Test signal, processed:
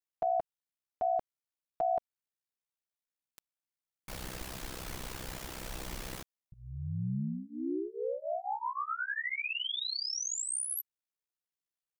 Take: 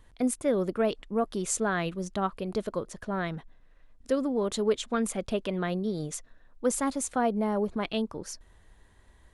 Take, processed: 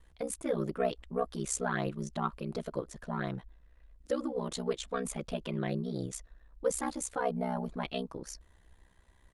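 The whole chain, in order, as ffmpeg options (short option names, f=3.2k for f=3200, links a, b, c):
-af "aecho=1:1:6.1:0.93,aeval=exprs='val(0)*sin(2*PI*32*n/s)':c=same,volume=-4.5dB"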